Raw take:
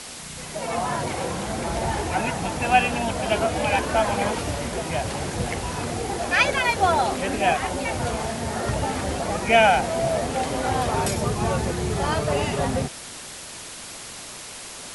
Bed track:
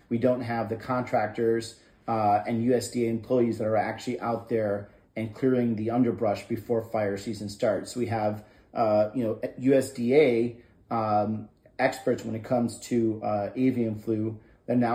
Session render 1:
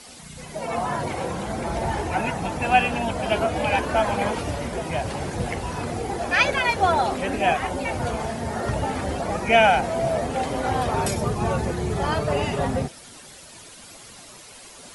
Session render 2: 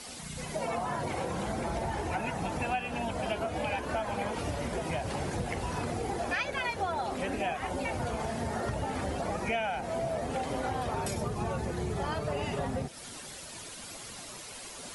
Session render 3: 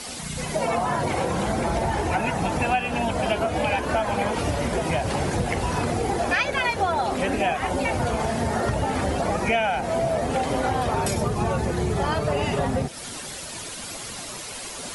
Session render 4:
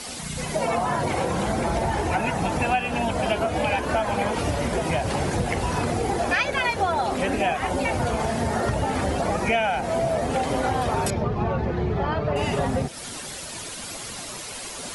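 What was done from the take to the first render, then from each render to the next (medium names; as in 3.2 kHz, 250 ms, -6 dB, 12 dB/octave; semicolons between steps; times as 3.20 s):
noise reduction 10 dB, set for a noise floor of -38 dBFS
compression 6:1, threshold -30 dBFS, peak gain reduction 17 dB
trim +9 dB
11.10–12.36 s: distance through air 270 m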